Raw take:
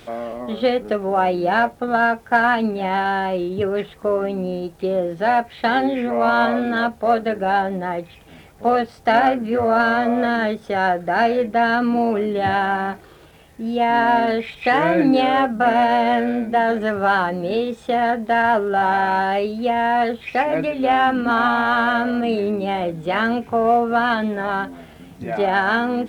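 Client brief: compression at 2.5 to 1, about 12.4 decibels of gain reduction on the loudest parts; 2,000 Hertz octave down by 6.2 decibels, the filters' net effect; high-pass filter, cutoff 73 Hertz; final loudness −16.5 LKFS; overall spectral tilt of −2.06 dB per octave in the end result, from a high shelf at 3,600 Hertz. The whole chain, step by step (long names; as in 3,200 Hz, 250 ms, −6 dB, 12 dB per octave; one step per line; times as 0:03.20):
high-pass filter 73 Hz
parametric band 2,000 Hz −7.5 dB
high-shelf EQ 3,600 Hz −5 dB
downward compressor 2.5 to 1, threshold −32 dBFS
level +14.5 dB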